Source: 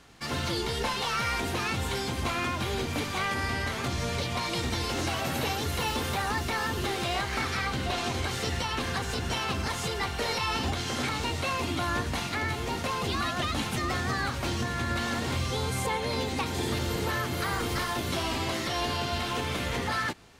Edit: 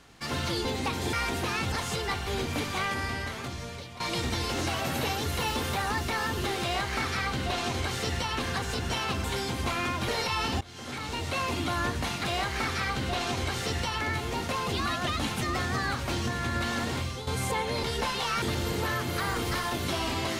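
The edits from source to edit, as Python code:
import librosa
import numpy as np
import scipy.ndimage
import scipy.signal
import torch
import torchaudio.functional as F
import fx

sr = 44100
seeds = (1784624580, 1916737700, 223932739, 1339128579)

y = fx.edit(x, sr, fx.swap(start_s=0.65, length_s=0.59, other_s=16.18, other_length_s=0.48),
    fx.swap(start_s=1.83, length_s=0.84, other_s=9.64, other_length_s=0.55),
    fx.fade_out_to(start_s=3.18, length_s=1.22, floor_db=-15.0),
    fx.duplicate(start_s=7.02, length_s=1.76, to_s=12.36),
    fx.fade_in_from(start_s=10.72, length_s=0.79, floor_db=-21.0),
    fx.fade_out_to(start_s=15.24, length_s=0.38, floor_db=-10.5), tone=tone)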